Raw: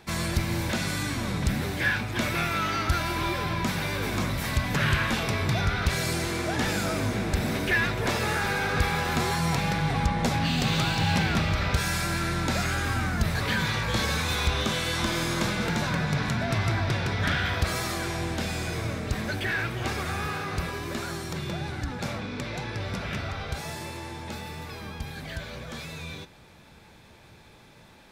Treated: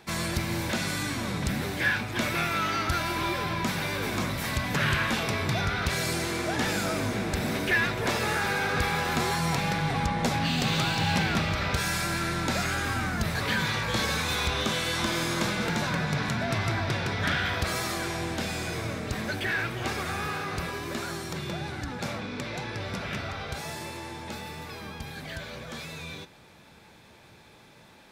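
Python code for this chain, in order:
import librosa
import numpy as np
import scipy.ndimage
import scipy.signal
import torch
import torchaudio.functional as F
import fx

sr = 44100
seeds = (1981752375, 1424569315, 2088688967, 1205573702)

y = fx.low_shelf(x, sr, hz=77.0, db=-10.5)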